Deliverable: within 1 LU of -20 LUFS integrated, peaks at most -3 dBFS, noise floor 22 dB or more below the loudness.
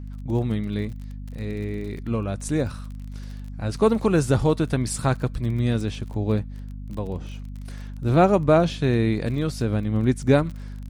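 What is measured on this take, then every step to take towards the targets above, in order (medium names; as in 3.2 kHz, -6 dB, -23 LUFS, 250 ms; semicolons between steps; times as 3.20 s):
tick rate 31 per s; hum 50 Hz; highest harmonic 250 Hz; hum level -32 dBFS; loudness -23.5 LUFS; peak level -5.5 dBFS; loudness target -20.0 LUFS
-> de-click; hum notches 50/100/150/200/250 Hz; trim +3.5 dB; peak limiter -3 dBFS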